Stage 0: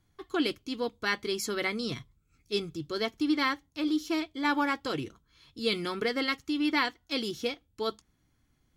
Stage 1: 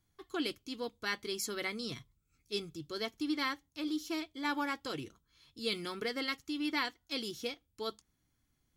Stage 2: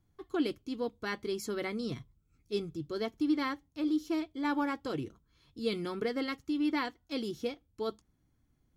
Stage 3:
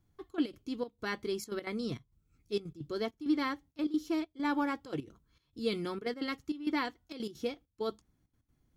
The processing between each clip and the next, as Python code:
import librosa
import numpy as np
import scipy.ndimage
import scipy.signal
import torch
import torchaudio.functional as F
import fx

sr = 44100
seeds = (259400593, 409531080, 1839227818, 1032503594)

y1 = fx.high_shelf(x, sr, hz=4700.0, db=7.5)
y1 = y1 * 10.0 ** (-7.5 / 20.0)
y2 = fx.tilt_shelf(y1, sr, db=6.5, hz=1300.0)
y3 = fx.step_gate(y2, sr, bpm=198, pattern='xxxx.x.xxxx..xx', floor_db=-12.0, edge_ms=4.5)